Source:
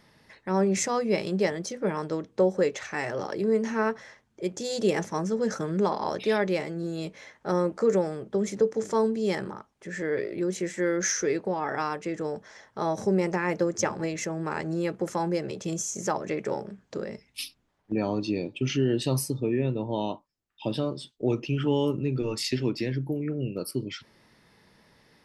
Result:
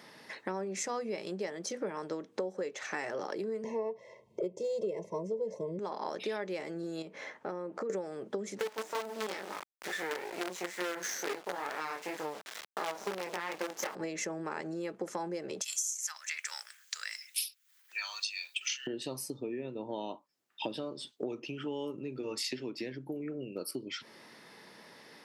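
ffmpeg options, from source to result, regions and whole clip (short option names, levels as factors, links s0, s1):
-filter_complex "[0:a]asettb=1/sr,asplit=3[s0][s1][s2];[s0]atrim=end=3.644[s3];[s1]atrim=start=3.64:end=5.79,asetpts=PTS-STARTPTS,afade=t=in:d=0.004:c=qsin,afade=t=out:st=2.146:d=0.004:c=qsin,asuperstop=centerf=1400:order=12:qfactor=1.8,tiltshelf=f=1200:g=9.5,aecho=1:1:1.9:0.91,atrim=end_sample=94815[s4];[s2]atrim=start=5.786[s5];[s3][s4]acrossfade=d=0.004:c1=hsin:c2=qsin[s6];[s6][s5]acrossfade=d=0.004:c1=qsin:c2=hsin,asettb=1/sr,asplit=3[s7][s8][s9];[s7]atrim=end=7.024[s10];[s8]atrim=start=7.02:end=7.9,asetpts=PTS-STARTPTS,afade=t=in:d=0.004:c=qsin,afade=t=out:st=0.876:d=0.004:c=qsin,highshelf=f=3100:g=-11.5,acompressor=threshold=0.00891:ratio=2.5:attack=3.2:release=140:knee=1:detection=peak[s11];[s9]atrim=start=7.896[s12];[s10][s11]acrossfade=d=0.004:c1=hsin:c2=qsin[s13];[s13][s12]acrossfade=d=0.004:c1=qsin:c2=hsin,asettb=1/sr,asplit=3[s14][s15][s16];[s14]atrim=end=8.594[s17];[s15]atrim=start=8.59:end=13.95,asetpts=PTS-STARTPTS,afade=t=in:d=0.004:c=qsin,afade=t=out:st=5.356:d=0.004:c=qsin,flanger=delay=19.5:depth=3.5:speed=2.2,acrusher=bits=5:dc=4:mix=0:aa=0.000001,asplit=2[s18][s19];[s19]highpass=f=720:p=1,volume=3.55,asoftclip=type=tanh:threshold=0.168[s20];[s18][s20]amix=inputs=2:normalize=0,lowpass=f=5300:p=1,volume=0.501[s21];[s16]atrim=start=13.946[s22];[s17][s21]acrossfade=d=0.004:c1=hsin:c2=qsin[s23];[s23][s22]acrossfade=d=0.004:c1=qsin:c2=hsin,asettb=1/sr,asplit=3[s24][s25][s26];[s24]atrim=end=15.614[s27];[s25]atrim=start=15.61:end=18.87,asetpts=PTS-STARTPTS,afade=t=in:d=0.004:c=qsin,afade=t=out:st=3.256:d=0.004:c=qsin,highpass=f=1500:w=0.5412,highpass=f=1500:w=1.3066,aemphasis=mode=production:type=riaa[s28];[s26]atrim=start=18.866[s29];[s27][s28]acrossfade=d=0.004:c1=hsin:c2=qsin[s30];[s30][s29]acrossfade=d=0.004:c1=qsin:c2=hsin,acompressor=threshold=0.01:ratio=8,highpass=260,volume=2.24"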